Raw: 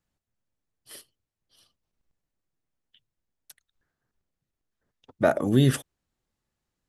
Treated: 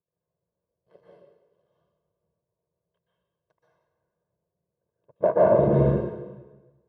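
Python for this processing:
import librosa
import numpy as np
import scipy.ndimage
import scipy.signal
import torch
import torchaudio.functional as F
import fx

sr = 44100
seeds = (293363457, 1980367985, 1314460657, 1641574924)

y = fx.cycle_switch(x, sr, every=2, mode='muted')
y = scipy.signal.sosfilt(scipy.signal.cheby1(2, 1.0, [160.0, 700.0], 'bandpass', fs=sr, output='sos'), y)
y = y + 0.91 * np.pad(y, (int(1.9 * sr / 1000.0), 0))[:len(y)]
y = fx.rev_plate(y, sr, seeds[0], rt60_s=1.2, hf_ratio=0.95, predelay_ms=115, drr_db=-7.0)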